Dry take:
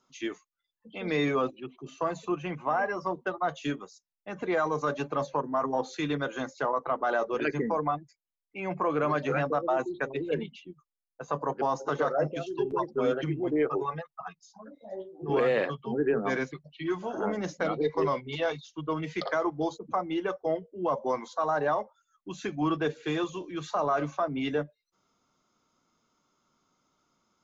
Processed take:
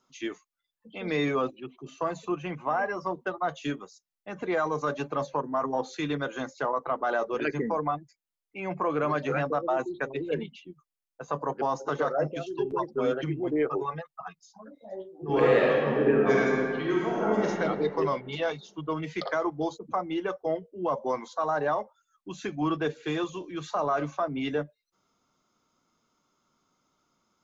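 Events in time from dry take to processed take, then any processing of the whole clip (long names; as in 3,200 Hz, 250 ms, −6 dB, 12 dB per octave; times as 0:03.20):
0:15.29–0:17.47: thrown reverb, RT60 2.1 s, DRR −3.5 dB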